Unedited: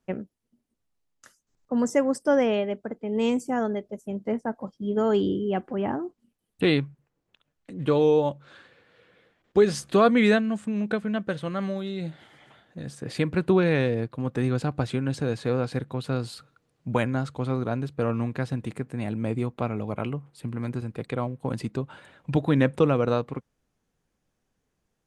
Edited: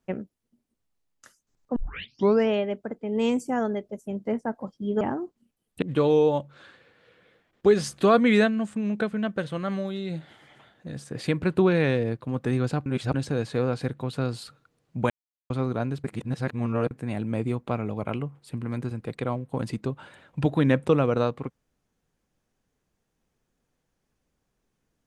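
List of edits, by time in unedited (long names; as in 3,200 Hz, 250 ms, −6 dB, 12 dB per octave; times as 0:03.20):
0:01.76: tape start 0.73 s
0:05.01–0:05.83: remove
0:06.64–0:07.73: remove
0:14.77–0:15.05: reverse
0:17.01–0:17.41: silence
0:17.95–0:18.82: reverse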